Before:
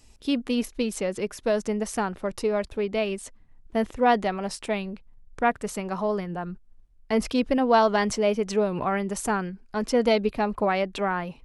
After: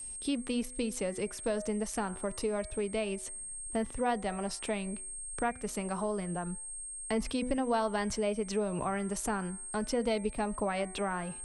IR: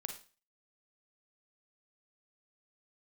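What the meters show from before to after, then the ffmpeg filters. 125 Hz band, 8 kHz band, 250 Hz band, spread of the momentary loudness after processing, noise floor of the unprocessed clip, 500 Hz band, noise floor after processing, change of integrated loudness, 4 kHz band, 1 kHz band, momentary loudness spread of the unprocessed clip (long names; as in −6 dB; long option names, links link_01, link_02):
−5.5 dB, +1.5 dB, −7.0 dB, 5 LU, −54 dBFS, −8.5 dB, −45 dBFS, −8.0 dB, −7.5 dB, −9.5 dB, 10 LU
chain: -filter_complex "[0:a]bandreject=frequency=124.9:width_type=h:width=4,bandreject=frequency=249.8:width_type=h:width=4,bandreject=frequency=374.7:width_type=h:width=4,bandreject=frequency=499.6:width_type=h:width=4,bandreject=frequency=624.5:width_type=h:width=4,bandreject=frequency=749.4:width_type=h:width=4,bandreject=frequency=874.3:width_type=h:width=4,bandreject=frequency=999.2:width_type=h:width=4,bandreject=frequency=1124.1:width_type=h:width=4,bandreject=frequency=1249:width_type=h:width=4,bandreject=frequency=1373.9:width_type=h:width=4,bandreject=frequency=1498.8:width_type=h:width=4,bandreject=frequency=1623.7:width_type=h:width=4,bandreject=frequency=1748.6:width_type=h:width=4,bandreject=frequency=1873.5:width_type=h:width=4,bandreject=frequency=1998.4:width_type=h:width=4,bandreject=frequency=2123.3:width_type=h:width=4,bandreject=frequency=2248.2:width_type=h:width=4,bandreject=frequency=2373.1:width_type=h:width=4,aeval=exprs='val(0)+0.01*sin(2*PI*8500*n/s)':channel_layout=same,acrossover=split=120[link_01][link_02];[link_02]acompressor=threshold=-36dB:ratio=2[link_03];[link_01][link_03]amix=inputs=2:normalize=0"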